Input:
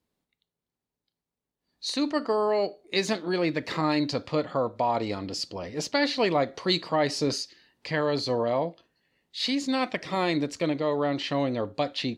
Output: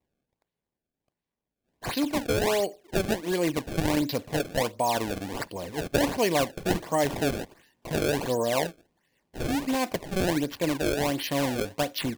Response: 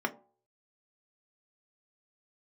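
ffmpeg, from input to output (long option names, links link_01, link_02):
-af "acrusher=samples=26:mix=1:aa=0.000001:lfo=1:lforange=41.6:lforate=1.4,bandreject=frequency=1300:width=6"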